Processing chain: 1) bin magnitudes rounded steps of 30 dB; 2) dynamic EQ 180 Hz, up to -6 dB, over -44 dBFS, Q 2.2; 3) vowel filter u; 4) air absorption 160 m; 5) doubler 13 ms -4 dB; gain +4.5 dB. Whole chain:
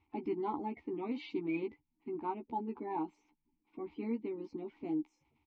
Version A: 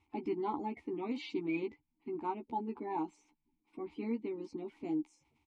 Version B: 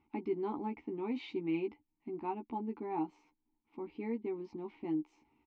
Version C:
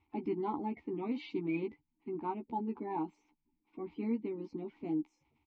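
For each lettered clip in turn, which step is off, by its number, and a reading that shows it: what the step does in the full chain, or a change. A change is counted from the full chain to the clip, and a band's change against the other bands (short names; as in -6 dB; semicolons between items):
4, 4 kHz band +3.5 dB; 1, 1 kHz band -2.5 dB; 2, 125 Hz band +5.0 dB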